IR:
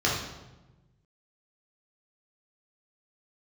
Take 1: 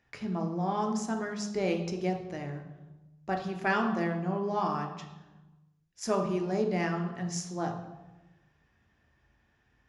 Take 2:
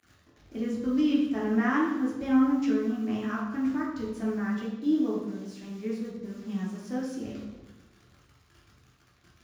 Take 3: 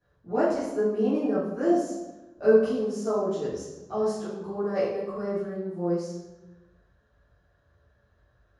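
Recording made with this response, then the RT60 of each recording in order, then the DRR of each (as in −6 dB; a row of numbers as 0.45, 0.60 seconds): 2; 1.1, 1.1, 1.1 seconds; 3.0, −5.5, −13.5 decibels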